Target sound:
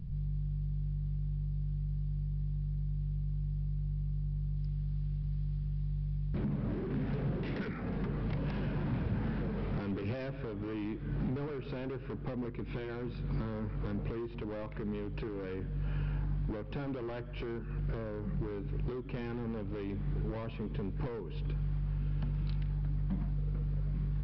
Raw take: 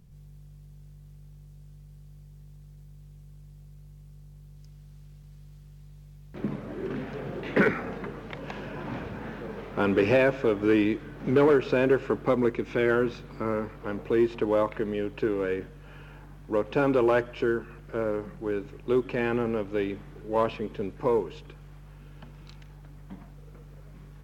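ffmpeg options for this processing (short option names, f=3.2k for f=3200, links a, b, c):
-af "acompressor=threshold=-37dB:ratio=6,aresample=11025,asoftclip=type=hard:threshold=-39.5dB,aresample=44100,bass=f=250:g=15,treble=f=4k:g=-1"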